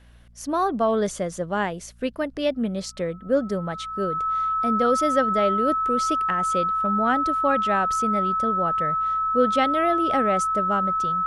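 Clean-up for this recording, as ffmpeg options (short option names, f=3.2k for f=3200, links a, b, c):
-af "bandreject=f=58.7:t=h:w=4,bandreject=f=117.4:t=h:w=4,bandreject=f=176.1:t=h:w=4,bandreject=f=234.8:t=h:w=4,bandreject=f=1.3k:w=30"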